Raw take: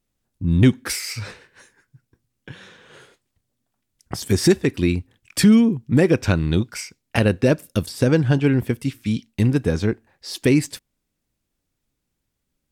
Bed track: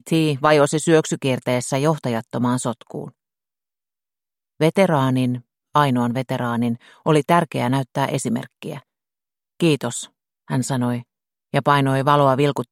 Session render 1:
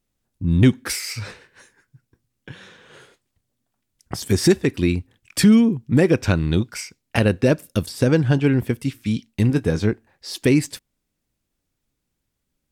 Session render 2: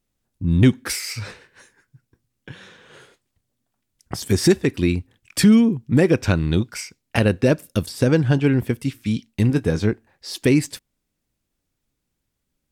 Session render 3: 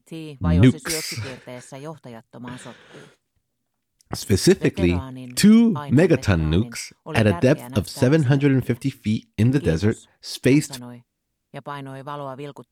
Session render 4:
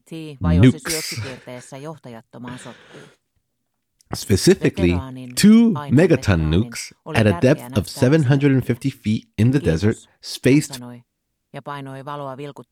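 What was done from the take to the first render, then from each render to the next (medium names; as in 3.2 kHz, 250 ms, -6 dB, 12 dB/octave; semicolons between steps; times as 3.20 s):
9.48–9.90 s: doubling 19 ms -12 dB
no audible change
add bed track -16.5 dB
trim +2 dB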